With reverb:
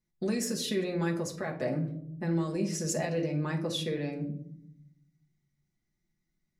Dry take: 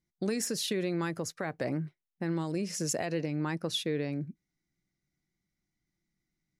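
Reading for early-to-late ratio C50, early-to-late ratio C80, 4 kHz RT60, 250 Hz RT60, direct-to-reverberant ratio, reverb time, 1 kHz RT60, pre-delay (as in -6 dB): 10.0 dB, 14.5 dB, 0.35 s, 1.3 s, -1.5 dB, 0.70 s, 0.55 s, 5 ms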